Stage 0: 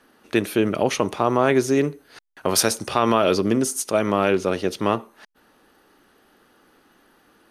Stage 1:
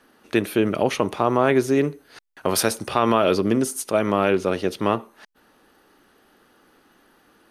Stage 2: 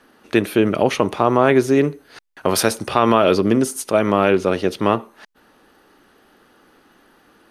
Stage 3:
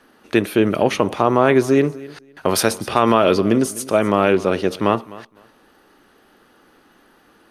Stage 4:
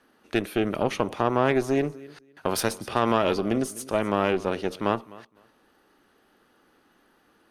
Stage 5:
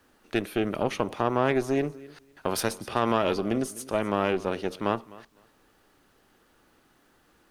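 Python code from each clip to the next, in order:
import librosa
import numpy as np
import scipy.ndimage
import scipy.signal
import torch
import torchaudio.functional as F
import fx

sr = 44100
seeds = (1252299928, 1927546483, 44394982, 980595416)

y1 = fx.dynamic_eq(x, sr, hz=6300.0, q=1.3, threshold_db=-42.0, ratio=4.0, max_db=-6)
y2 = fx.high_shelf(y1, sr, hz=7000.0, db=-4.0)
y2 = y2 * librosa.db_to_amplitude(4.0)
y3 = fx.echo_feedback(y2, sr, ms=254, feedback_pct=19, wet_db=-19.5)
y4 = fx.tube_stage(y3, sr, drive_db=5.0, bias=0.7)
y4 = y4 * librosa.db_to_amplitude(-5.0)
y5 = fx.dmg_noise_colour(y4, sr, seeds[0], colour='pink', level_db=-66.0)
y5 = y5 * librosa.db_to_amplitude(-2.0)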